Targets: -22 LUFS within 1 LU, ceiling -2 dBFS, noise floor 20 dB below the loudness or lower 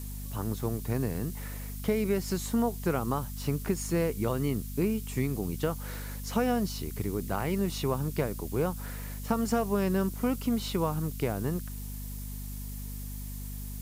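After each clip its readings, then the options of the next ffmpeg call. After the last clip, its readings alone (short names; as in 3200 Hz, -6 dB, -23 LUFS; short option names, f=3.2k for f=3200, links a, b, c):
hum 50 Hz; harmonics up to 250 Hz; hum level -36 dBFS; noise floor -38 dBFS; noise floor target -52 dBFS; loudness -31.5 LUFS; peak -15.0 dBFS; loudness target -22.0 LUFS
-> -af "bandreject=f=50:t=h:w=4,bandreject=f=100:t=h:w=4,bandreject=f=150:t=h:w=4,bandreject=f=200:t=h:w=4,bandreject=f=250:t=h:w=4"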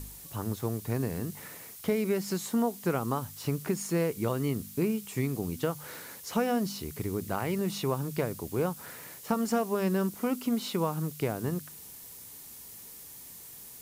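hum none; noise floor -47 dBFS; noise floor target -52 dBFS
-> -af "afftdn=nr=6:nf=-47"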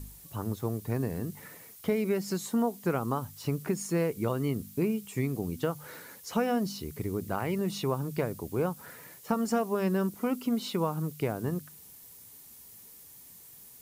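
noise floor -52 dBFS; loudness -31.5 LUFS; peak -15.5 dBFS; loudness target -22.0 LUFS
-> -af "volume=9.5dB"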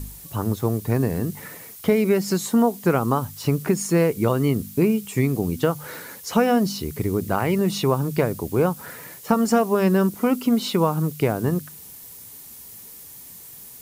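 loudness -22.0 LUFS; peak -6.0 dBFS; noise floor -42 dBFS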